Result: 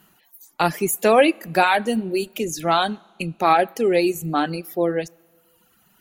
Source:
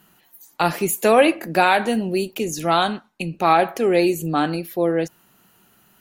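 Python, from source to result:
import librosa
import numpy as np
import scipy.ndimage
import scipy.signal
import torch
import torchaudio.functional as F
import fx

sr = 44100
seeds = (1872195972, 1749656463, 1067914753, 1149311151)

y = fx.rev_schroeder(x, sr, rt60_s=1.8, comb_ms=28, drr_db=17.5)
y = fx.dereverb_blind(y, sr, rt60_s=1.1)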